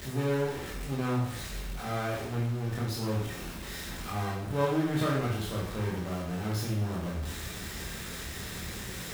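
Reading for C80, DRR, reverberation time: 6.0 dB, −5.0 dB, 0.65 s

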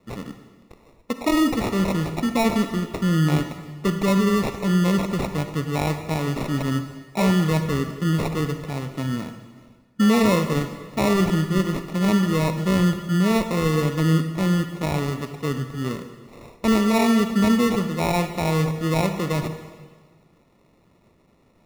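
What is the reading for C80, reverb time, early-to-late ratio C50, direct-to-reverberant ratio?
10.0 dB, 1.5 s, 8.5 dB, 8.0 dB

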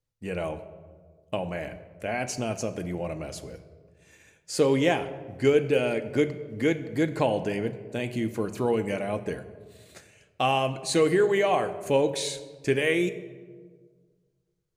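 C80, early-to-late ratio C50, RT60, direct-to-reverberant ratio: 14.5 dB, 13.0 dB, 1.6 s, 8.0 dB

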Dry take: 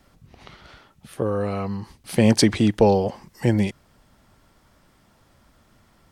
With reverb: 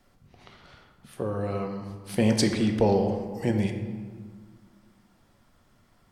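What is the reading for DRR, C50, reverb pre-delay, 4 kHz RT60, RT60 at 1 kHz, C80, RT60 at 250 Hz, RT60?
4.5 dB, 6.5 dB, 3 ms, 0.95 s, 1.7 s, 8.0 dB, 2.3 s, 1.7 s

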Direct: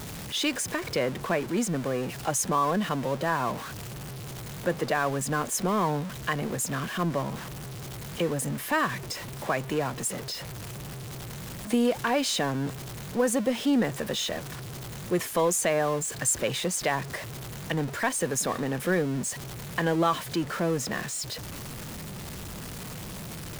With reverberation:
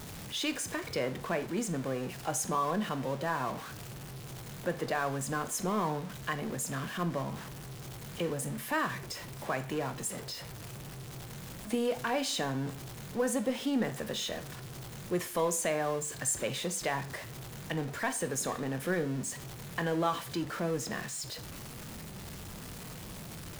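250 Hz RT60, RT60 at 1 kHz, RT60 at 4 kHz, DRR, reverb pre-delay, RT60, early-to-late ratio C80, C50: 0.40 s, 0.40 s, 0.40 s, 9.5 dB, 17 ms, 0.40 s, 19.0 dB, 15.5 dB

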